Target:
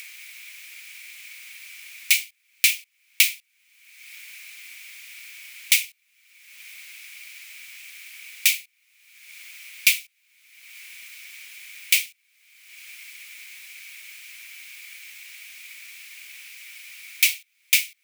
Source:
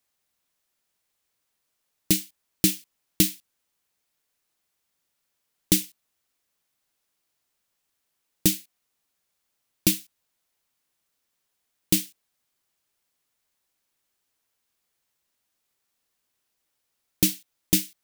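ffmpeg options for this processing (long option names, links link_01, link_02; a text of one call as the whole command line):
ffmpeg -i in.wav -af "acompressor=mode=upward:threshold=-25dB:ratio=2.5,highpass=frequency=2300:width_type=q:width=9.2,volume=2dB" out.wav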